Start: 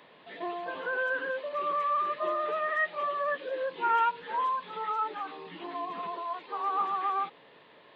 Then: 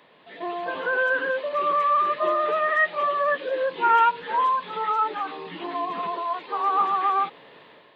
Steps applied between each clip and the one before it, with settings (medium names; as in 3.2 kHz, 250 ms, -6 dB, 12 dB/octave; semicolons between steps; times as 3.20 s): level rider gain up to 7.5 dB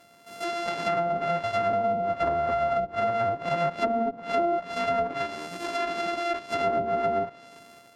sorted samples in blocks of 64 samples; low-pass that closes with the level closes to 480 Hz, closed at -17 dBFS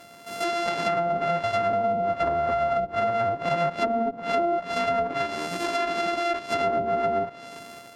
compression 2:1, threshold -35 dBFS, peak gain reduction 8.5 dB; trim +8 dB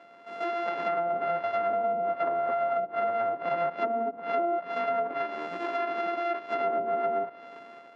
band-pass 310–2100 Hz; trim -3 dB